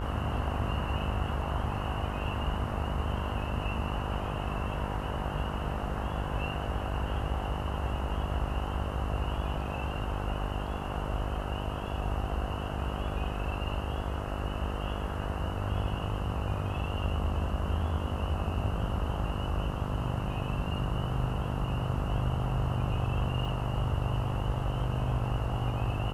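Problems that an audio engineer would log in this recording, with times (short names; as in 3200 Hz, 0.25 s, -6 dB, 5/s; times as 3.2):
buzz 50 Hz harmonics 27 -36 dBFS
23.45 gap 3.3 ms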